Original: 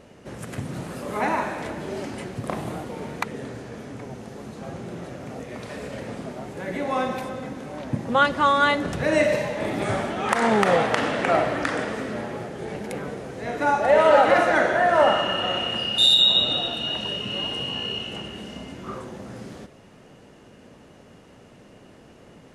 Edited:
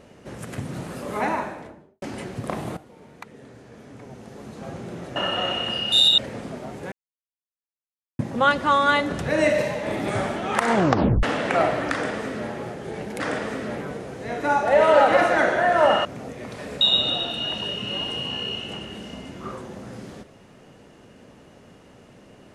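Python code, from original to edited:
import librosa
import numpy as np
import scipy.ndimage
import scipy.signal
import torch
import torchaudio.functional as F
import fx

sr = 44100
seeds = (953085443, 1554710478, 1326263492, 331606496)

y = fx.studio_fade_out(x, sr, start_s=1.18, length_s=0.84)
y = fx.edit(y, sr, fx.fade_in_from(start_s=2.77, length_s=1.89, curve='qua', floor_db=-15.0),
    fx.swap(start_s=5.16, length_s=0.76, other_s=15.22, other_length_s=1.02),
    fx.silence(start_s=6.66, length_s=1.27),
    fx.tape_stop(start_s=10.48, length_s=0.49),
    fx.duplicate(start_s=11.66, length_s=0.57, to_s=12.94), tone=tone)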